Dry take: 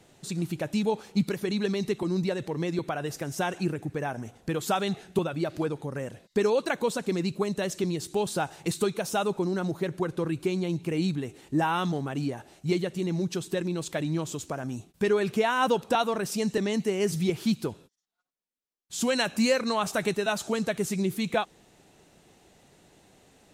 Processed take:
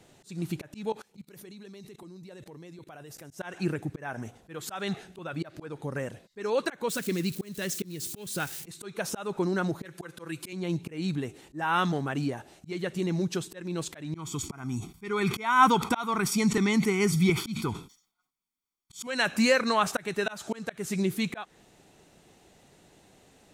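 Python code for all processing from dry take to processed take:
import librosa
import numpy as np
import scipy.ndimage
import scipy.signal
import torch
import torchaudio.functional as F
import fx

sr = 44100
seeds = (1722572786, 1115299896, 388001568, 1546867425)

y = fx.chain(x, sr, fx.high_shelf(hz=8800.0, db=10.0),
    fx.level_steps(step_db=23), at=(0.92, 3.31))
y = fx.chain(y, sr, fx.crossing_spikes(level_db=-31.5),
    fx.peak_eq(hz=810.0, db=-12.0, octaves=1.2),
    fx.quant_companded(bits=8), at=(6.89, 8.65))
y = fx.chain(y, sr, fx.highpass(hz=44.0, slope=12),
    fx.tilt_eq(slope=2.5),
    fx.comb(ms=5.9, depth=0.58), at=(9.85, 10.53))
y = fx.chain(y, sr, fx.comb(ms=0.9, depth=0.96),
    fx.sustainer(db_per_s=130.0), at=(14.14, 19.07))
y = fx.dynamic_eq(y, sr, hz=1600.0, q=1.1, threshold_db=-44.0, ratio=4.0, max_db=7)
y = fx.auto_swell(y, sr, attack_ms=268.0)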